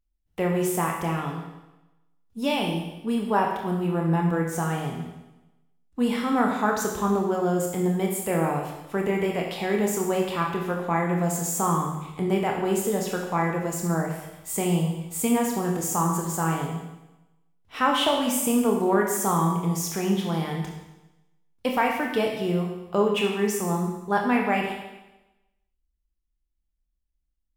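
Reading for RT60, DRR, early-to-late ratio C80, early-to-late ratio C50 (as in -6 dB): 1.0 s, 0.0 dB, 6.0 dB, 3.5 dB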